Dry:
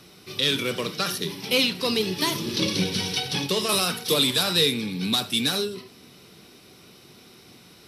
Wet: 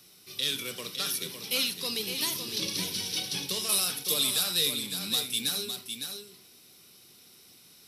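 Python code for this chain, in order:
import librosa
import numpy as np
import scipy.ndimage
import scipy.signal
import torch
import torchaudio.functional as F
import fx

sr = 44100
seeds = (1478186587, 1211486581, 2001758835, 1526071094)

p1 = librosa.effects.preemphasis(x, coef=0.8, zi=[0.0])
y = p1 + fx.echo_single(p1, sr, ms=558, db=-7.0, dry=0)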